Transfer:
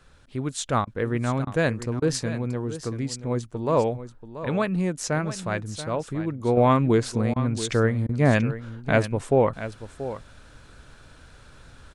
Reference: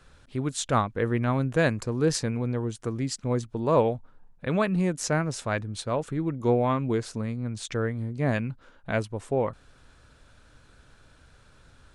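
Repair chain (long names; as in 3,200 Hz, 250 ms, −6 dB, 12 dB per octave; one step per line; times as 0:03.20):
repair the gap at 0:00.85/0:01.45/0:02.00/0:07.34/0:08.07, 19 ms
echo removal 682 ms −12.5 dB
level 0 dB, from 0:06.57 −6.5 dB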